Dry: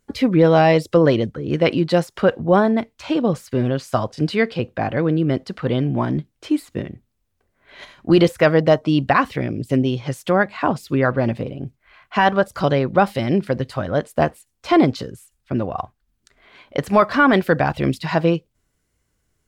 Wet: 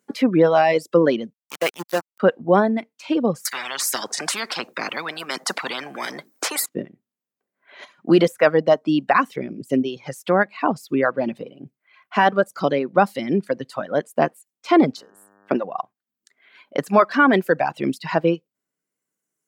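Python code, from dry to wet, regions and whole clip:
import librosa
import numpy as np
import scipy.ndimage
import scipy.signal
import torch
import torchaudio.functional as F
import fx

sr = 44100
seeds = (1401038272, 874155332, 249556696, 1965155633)

y = fx.chain(x, sr, fx.highpass(hz=630.0, slope=6),
    fx.sample_gate(floor_db=-20.5), at=(1.33, 2.2))
y = fx.chain(y, sr, fx.highpass(hz=270.0, slope=12),
    fx.peak_eq(hz=2900.0, db=-11.5, octaves=0.83),
    fx.spectral_comp(ratio=10.0), at=(3.45, 6.66))
y = fx.bass_treble(y, sr, bass_db=-12, treble_db=2, at=(14.96, 15.63), fade=0.02)
y = fx.transient(y, sr, attack_db=11, sustain_db=-5, at=(14.96, 15.63), fade=0.02)
y = fx.dmg_buzz(y, sr, base_hz=100.0, harmonics=18, level_db=-44.0, tilt_db=-3, odd_only=False, at=(14.96, 15.63), fade=0.02)
y = scipy.signal.sosfilt(scipy.signal.butter(4, 180.0, 'highpass', fs=sr, output='sos'), y)
y = fx.dereverb_blind(y, sr, rt60_s=1.9)
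y = fx.peak_eq(y, sr, hz=3800.0, db=-3.5, octaves=0.87)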